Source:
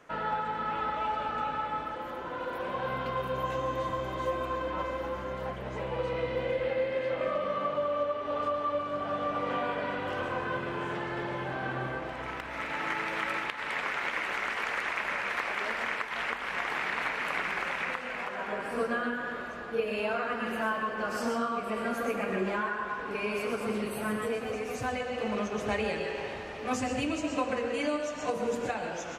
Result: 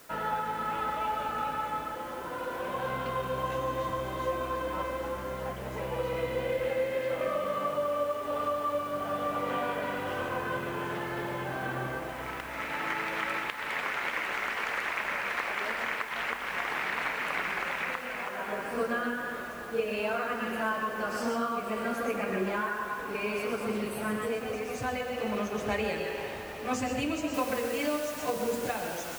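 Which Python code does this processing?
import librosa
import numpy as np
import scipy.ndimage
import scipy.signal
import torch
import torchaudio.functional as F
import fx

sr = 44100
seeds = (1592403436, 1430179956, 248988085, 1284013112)

y = fx.noise_floor_step(x, sr, seeds[0], at_s=27.34, before_db=-56, after_db=-44, tilt_db=0.0)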